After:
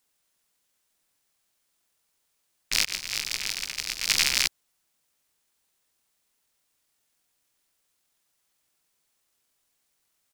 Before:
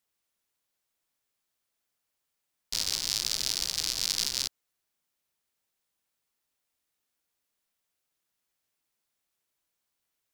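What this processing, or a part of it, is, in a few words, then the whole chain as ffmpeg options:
octave pedal: -filter_complex "[0:a]asplit=2[a][b];[b]asetrate=22050,aresample=44100,atempo=2,volume=-1dB[c];[a][c]amix=inputs=2:normalize=0,asettb=1/sr,asplit=3[d][e][f];[d]atrim=end=2.854[g];[e]atrim=start=2.85:end=4.09,asetpts=PTS-STARTPTS,afade=t=in:d=0.004:c=qsin,afade=t=out:st=1.236:d=0.004:c=qsin,agate=range=-33dB:threshold=-20dB:ratio=3:detection=peak[h];[f]atrim=start=4.086[i];[g][h]acrossfade=d=0.004:c1=hsin:c2=qsin[j];[j][i]acrossfade=d=0.004:c1=qsin:c2=hsin,highshelf=f=6k:g=4.5,volume=3dB"

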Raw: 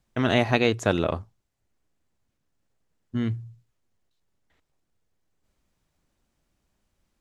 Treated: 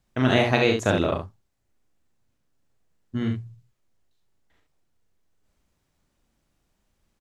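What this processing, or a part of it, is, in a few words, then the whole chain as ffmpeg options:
slapback doubling: -filter_complex "[0:a]asplit=3[a][b][c];[b]adelay=39,volume=-5.5dB[d];[c]adelay=70,volume=-6dB[e];[a][d][e]amix=inputs=3:normalize=0"

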